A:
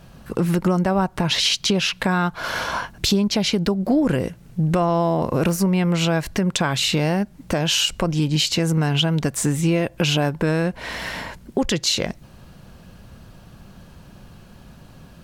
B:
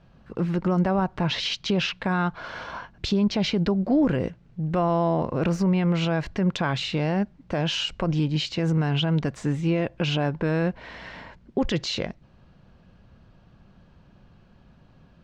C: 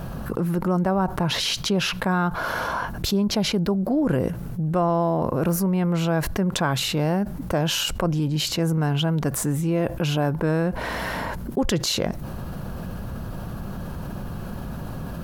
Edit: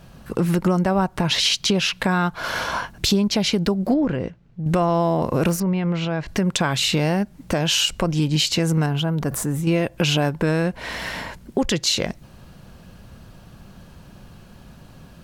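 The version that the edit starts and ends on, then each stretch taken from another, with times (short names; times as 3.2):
A
3.94–4.66 from B
5.6–6.28 from B
8.86–9.67 from C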